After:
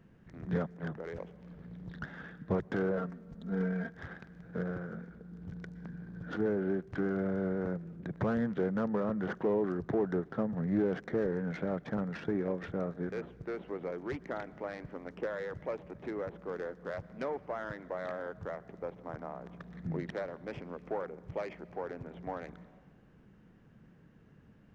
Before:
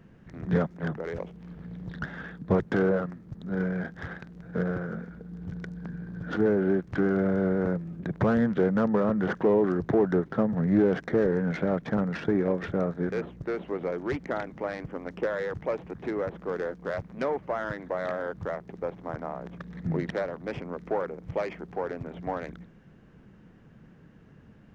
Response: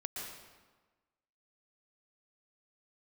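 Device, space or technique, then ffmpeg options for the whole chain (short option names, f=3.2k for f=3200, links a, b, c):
compressed reverb return: -filter_complex "[0:a]asettb=1/sr,asplit=3[a][b][c];[a]atrim=end=2.974[d];[b]atrim=start=2.97:end=3.89,asetpts=PTS-STARTPTS,afade=t=in:d=0.004:c=qsin,afade=t=out:st=0.916:d=0.004:c=qsin,aecho=1:1:4.4:0.87,atrim=end_sample=40572[e];[c]atrim=start=3.886[f];[d][e]acrossfade=d=0.004:c1=hsin:c2=qsin[g];[g][f]acrossfade=d=0.004:c1=qsin:c2=hsin,asplit=2[h][i];[1:a]atrim=start_sample=2205[j];[i][j]afir=irnorm=-1:irlink=0,acompressor=threshold=-36dB:ratio=6,volume=-11dB[k];[h][k]amix=inputs=2:normalize=0,volume=-8dB"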